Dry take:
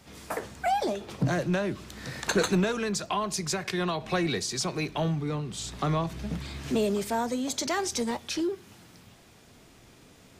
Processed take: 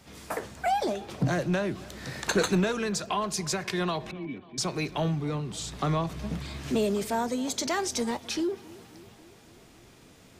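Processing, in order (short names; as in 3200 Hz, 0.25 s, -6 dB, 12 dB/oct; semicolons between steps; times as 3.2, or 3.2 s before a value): 4.11–4.58 vocal tract filter i; tape echo 0.271 s, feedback 72%, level -20 dB, low-pass 2200 Hz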